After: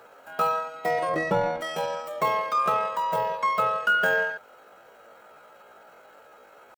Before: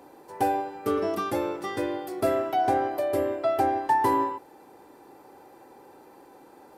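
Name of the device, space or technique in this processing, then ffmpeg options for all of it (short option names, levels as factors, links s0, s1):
chipmunk voice: -filter_complex "[0:a]asplit=3[s0][s1][s2];[s0]afade=t=out:st=1.09:d=0.02[s3];[s1]aemphasis=mode=reproduction:type=riaa,afade=t=in:st=1.09:d=0.02,afade=t=out:st=1.61:d=0.02[s4];[s2]afade=t=in:st=1.61:d=0.02[s5];[s3][s4][s5]amix=inputs=3:normalize=0,asetrate=72056,aresample=44100,atempo=0.612027"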